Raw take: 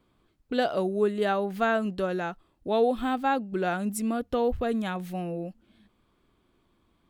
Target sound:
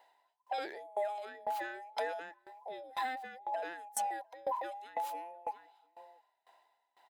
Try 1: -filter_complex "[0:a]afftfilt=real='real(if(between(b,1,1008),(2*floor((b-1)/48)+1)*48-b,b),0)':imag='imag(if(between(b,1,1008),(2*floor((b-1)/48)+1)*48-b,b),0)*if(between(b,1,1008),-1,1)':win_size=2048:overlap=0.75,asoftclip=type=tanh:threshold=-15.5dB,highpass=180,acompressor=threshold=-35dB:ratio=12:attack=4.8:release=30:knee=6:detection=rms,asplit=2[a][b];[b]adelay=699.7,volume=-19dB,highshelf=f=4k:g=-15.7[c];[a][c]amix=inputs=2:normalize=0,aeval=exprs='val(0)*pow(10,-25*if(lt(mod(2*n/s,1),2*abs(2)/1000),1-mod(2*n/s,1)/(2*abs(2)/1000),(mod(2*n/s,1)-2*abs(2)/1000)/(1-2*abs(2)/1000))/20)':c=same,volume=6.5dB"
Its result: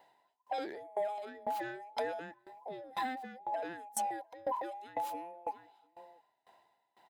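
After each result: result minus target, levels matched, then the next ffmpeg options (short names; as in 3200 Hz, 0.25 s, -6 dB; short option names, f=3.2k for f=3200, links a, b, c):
soft clip: distortion +18 dB; 250 Hz band +7.5 dB
-filter_complex "[0:a]afftfilt=real='real(if(between(b,1,1008),(2*floor((b-1)/48)+1)*48-b,b),0)':imag='imag(if(between(b,1,1008),(2*floor((b-1)/48)+1)*48-b,b),0)*if(between(b,1,1008),-1,1)':win_size=2048:overlap=0.75,asoftclip=type=tanh:threshold=-5.5dB,highpass=180,acompressor=threshold=-35dB:ratio=12:attack=4.8:release=30:knee=6:detection=rms,asplit=2[a][b];[b]adelay=699.7,volume=-19dB,highshelf=f=4k:g=-15.7[c];[a][c]amix=inputs=2:normalize=0,aeval=exprs='val(0)*pow(10,-25*if(lt(mod(2*n/s,1),2*abs(2)/1000),1-mod(2*n/s,1)/(2*abs(2)/1000),(mod(2*n/s,1)-2*abs(2)/1000)/(1-2*abs(2)/1000))/20)':c=same,volume=6.5dB"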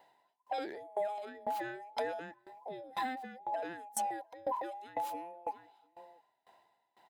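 250 Hz band +7.5 dB
-filter_complex "[0:a]afftfilt=real='real(if(between(b,1,1008),(2*floor((b-1)/48)+1)*48-b,b),0)':imag='imag(if(between(b,1,1008),(2*floor((b-1)/48)+1)*48-b,b),0)*if(between(b,1,1008),-1,1)':win_size=2048:overlap=0.75,asoftclip=type=tanh:threshold=-5.5dB,highpass=570,acompressor=threshold=-35dB:ratio=12:attack=4.8:release=30:knee=6:detection=rms,asplit=2[a][b];[b]adelay=699.7,volume=-19dB,highshelf=f=4k:g=-15.7[c];[a][c]amix=inputs=2:normalize=0,aeval=exprs='val(0)*pow(10,-25*if(lt(mod(2*n/s,1),2*abs(2)/1000),1-mod(2*n/s,1)/(2*abs(2)/1000),(mod(2*n/s,1)-2*abs(2)/1000)/(1-2*abs(2)/1000))/20)':c=same,volume=6.5dB"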